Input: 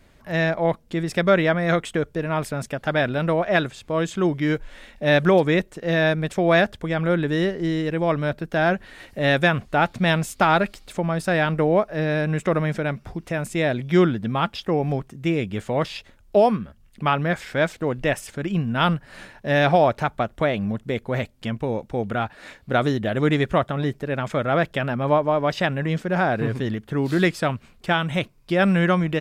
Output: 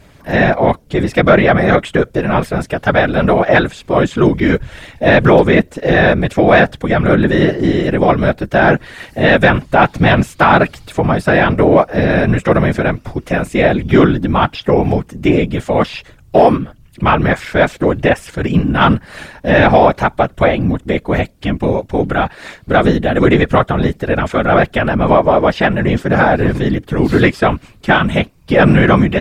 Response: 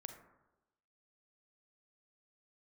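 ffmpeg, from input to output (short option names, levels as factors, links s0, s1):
-filter_complex "[0:a]acrossover=split=3300[s0][s1];[s1]acompressor=threshold=0.00562:ratio=4:attack=1:release=60[s2];[s0][s2]amix=inputs=2:normalize=0,afftfilt=real='hypot(re,im)*cos(2*PI*random(0))':imag='hypot(re,im)*sin(2*PI*random(1))':win_size=512:overlap=0.75,asplit=2[s3][s4];[s4]asoftclip=type=tanh:threshold=0.0944,volume=0.316[s5];[s3][s5]amix=inputs=2:normalize=0,apsyclip=5.96,volume=0.841"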